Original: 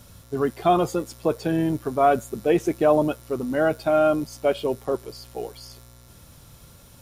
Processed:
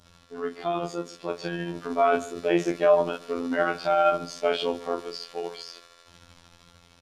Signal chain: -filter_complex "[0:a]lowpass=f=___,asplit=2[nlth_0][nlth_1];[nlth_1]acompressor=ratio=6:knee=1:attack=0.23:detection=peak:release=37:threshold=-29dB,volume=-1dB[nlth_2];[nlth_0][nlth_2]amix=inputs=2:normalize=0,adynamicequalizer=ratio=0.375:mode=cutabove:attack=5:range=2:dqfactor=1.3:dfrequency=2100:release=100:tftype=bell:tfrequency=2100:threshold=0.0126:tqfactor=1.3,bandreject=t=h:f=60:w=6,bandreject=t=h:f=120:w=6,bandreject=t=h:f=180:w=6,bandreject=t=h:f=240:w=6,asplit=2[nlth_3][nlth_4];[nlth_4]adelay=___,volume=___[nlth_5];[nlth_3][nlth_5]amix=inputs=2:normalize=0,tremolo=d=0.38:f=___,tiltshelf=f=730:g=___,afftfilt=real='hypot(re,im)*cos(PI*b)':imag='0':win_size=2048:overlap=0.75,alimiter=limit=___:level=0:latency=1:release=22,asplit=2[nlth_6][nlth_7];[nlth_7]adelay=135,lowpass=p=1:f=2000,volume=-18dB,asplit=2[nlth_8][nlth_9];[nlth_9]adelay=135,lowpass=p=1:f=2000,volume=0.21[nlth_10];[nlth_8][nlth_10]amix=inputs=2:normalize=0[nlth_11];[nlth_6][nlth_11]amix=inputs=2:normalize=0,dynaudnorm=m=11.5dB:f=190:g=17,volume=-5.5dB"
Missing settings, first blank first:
4200, 35, -5.5dB, 13, -5.5, -9.5dB